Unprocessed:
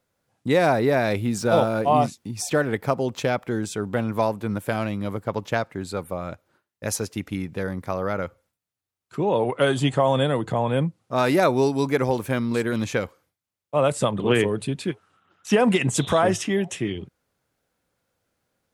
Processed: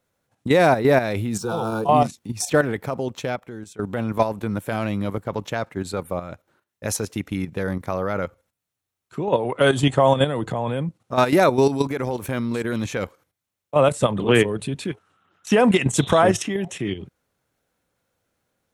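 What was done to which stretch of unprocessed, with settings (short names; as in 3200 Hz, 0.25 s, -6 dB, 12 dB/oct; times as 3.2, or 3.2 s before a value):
1.39–1.89 fixed phaser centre 400 Hz, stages 8
2.63–3.79 fade out, to -17.5 dB
11.85–12.65 compressor 2:1, threshold -26 dBFS
whole clip: notch 4800 Hz, Q 15; level quantiser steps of 10 dB; gain +5.5 dB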